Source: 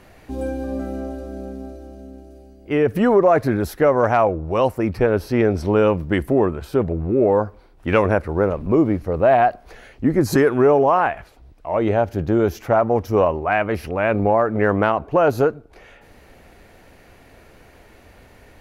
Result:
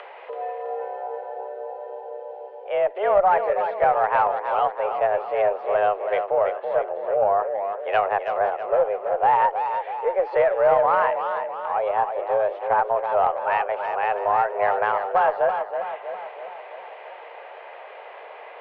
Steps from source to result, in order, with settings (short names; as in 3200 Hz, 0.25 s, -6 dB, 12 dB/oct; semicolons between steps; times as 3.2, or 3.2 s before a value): mistuned SSB +200 Hz 260–3300 Hz; upward compressor, threshold -25 dBFS; high shelf 2600 Hz -9.5 dB; on a send: tape echo 0.327 s, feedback 60%, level -5 dB, low-pass 2600 Hz; on the sum: added harmonics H 2 -8 dB, 4 -22 dB, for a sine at -0.5 dBFS; gain -3 dB